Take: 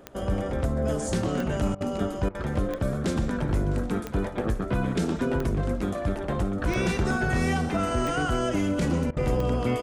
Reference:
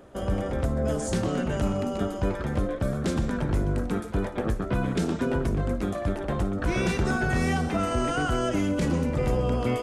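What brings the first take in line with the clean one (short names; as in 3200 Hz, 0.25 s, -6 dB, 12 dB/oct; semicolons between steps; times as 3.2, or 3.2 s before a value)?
de-click; interpolate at 1.75/2.29/9.11, 56 ms; inverse comb 0.658 s -18 dB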